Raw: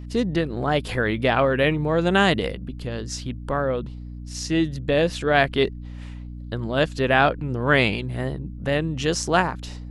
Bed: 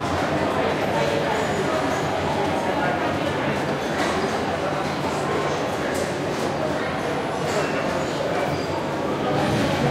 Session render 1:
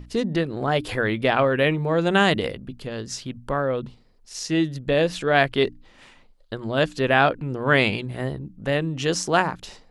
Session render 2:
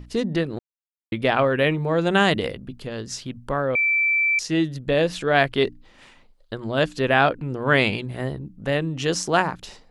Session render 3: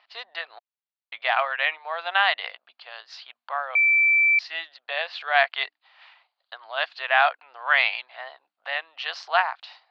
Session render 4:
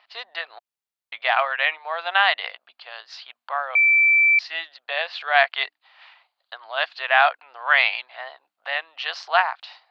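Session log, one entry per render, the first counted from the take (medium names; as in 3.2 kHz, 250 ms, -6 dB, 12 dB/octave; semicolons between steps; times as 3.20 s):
hum notches 60/120/180/240/300 Hz
0.59–1.12 s: mute; 3.75–4.39 s: bleep 2.33 kHz -17 dBFS
Chebyshev band-pass 700–4500 Hz, order 4; dynamic bell 2 kHz, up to +4 dB, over -35 dBFS, Q 3.3
trim +2.5 dB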